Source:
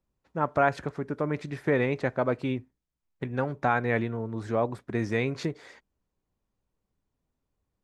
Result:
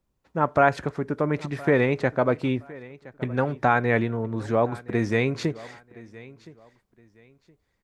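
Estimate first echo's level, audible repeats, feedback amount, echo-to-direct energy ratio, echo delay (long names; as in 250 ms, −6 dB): −20.5 dB, 2, 26%, −20.0 dB, 1,018 ms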